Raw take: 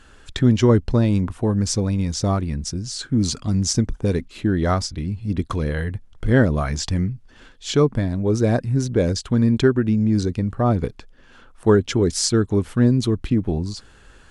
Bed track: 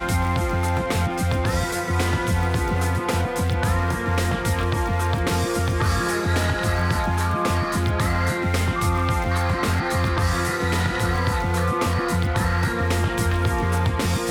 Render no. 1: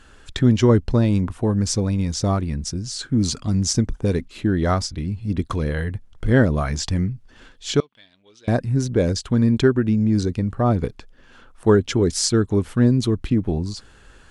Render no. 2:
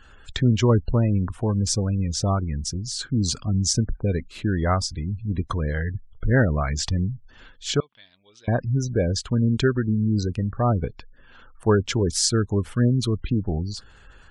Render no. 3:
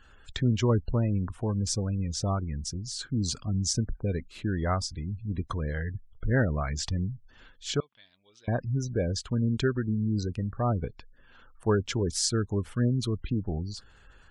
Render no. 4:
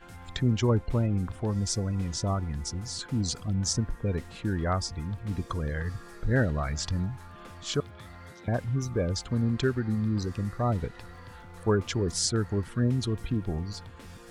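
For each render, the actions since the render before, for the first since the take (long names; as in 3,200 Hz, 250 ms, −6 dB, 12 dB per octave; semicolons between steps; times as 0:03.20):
0:07.80–0:08.48: resonant band-pass 3,200 Hz, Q 5.4
gate on every frequency bin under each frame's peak −30 dB strong; parametric band 300 Hz −6 dB 1.6 octaves
level −6 dB
mix in bed track −25 dB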